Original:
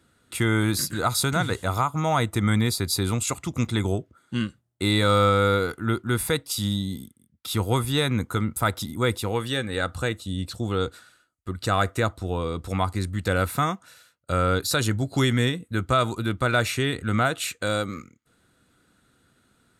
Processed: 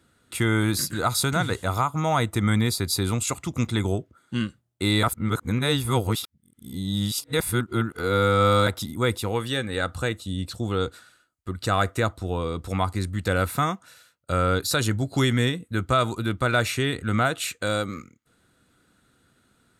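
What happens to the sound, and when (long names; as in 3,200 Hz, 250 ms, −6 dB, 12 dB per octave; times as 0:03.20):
0:05.03–0:08.67: reverse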